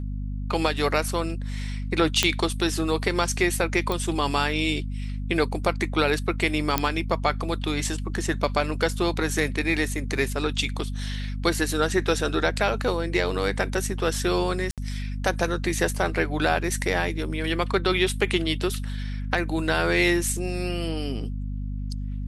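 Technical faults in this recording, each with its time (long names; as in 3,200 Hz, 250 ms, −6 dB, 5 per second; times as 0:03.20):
mains hum 50 Hz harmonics 5 −30 dBFS
0:02.23: click −3 dBFS
0:03.92: click
0:06.78: click −4 dBFS
0:14.71–0:14.78: drop-out 67 ms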